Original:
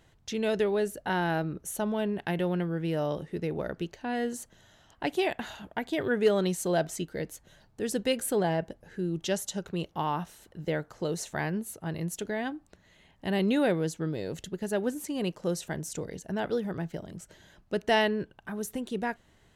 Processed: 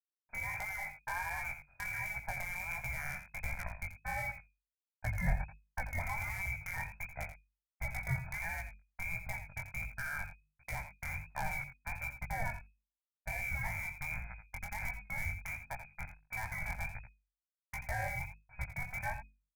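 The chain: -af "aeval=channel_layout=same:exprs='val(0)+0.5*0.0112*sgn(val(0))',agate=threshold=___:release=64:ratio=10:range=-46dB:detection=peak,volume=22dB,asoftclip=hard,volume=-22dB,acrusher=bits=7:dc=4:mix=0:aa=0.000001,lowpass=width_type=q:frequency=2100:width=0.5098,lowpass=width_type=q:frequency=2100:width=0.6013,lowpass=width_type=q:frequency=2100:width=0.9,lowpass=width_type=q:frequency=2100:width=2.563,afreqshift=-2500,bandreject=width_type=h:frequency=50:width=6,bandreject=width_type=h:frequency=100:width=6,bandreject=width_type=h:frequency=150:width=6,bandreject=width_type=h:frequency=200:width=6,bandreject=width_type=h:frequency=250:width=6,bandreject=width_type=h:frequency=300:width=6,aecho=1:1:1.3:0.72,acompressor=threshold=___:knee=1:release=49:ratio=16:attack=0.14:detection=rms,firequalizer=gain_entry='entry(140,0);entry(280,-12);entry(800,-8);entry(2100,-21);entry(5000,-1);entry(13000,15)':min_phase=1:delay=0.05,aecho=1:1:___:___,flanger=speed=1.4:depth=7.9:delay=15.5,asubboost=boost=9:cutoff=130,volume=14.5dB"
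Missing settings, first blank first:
-31dB, -27dB, 85, 0.282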